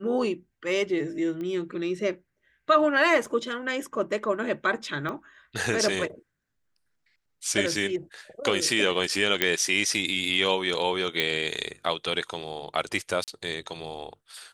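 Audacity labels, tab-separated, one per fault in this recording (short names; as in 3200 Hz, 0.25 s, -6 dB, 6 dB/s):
1.410000	1.410000	pop -25 dBFS
3.260000	3.260000	gap 3.6 ms
5.090000	5.090000	pop -21 dBFS
9.420000	9.420000	pop -6 dBFS
11.200000	11.200000	pop -10 dBFS
13.240000	13.280000	gap 38 ms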